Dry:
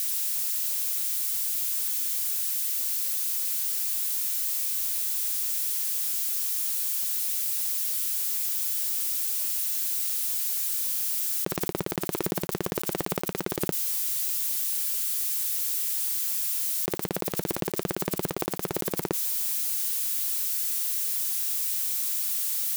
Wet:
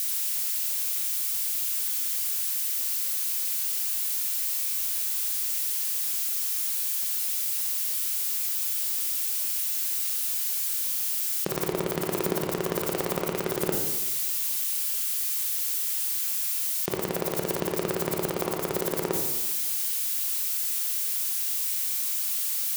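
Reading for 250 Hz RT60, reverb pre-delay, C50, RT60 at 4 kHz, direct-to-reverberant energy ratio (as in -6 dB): 1.1 s, 21 ms, 4.0 dB, 0.80 s, 1.0 dB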